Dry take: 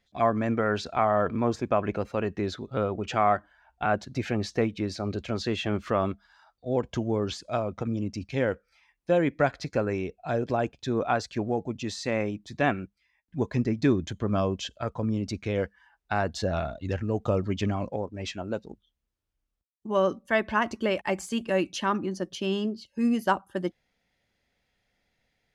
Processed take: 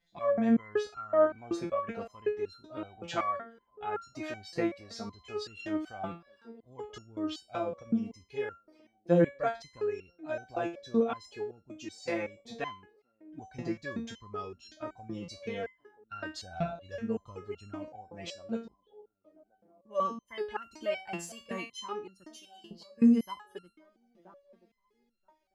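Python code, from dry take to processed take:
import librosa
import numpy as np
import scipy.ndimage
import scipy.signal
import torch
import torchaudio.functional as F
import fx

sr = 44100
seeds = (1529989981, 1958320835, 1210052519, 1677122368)

y = fx.pre_emphasis(x, sr, coefficient=0.9, at=(22.24, 22.71))
y = fx.echo_wet_bandpass(y, sr, ms=979, feedback_pct=35, hz=430.0, wet_db=-18.5)
y = fx.resonator_held(y, sr, hz=5.3, low_hz=170.0, high_hz=1400.0)
y = y * librosa.db_to_amplitude(8.0)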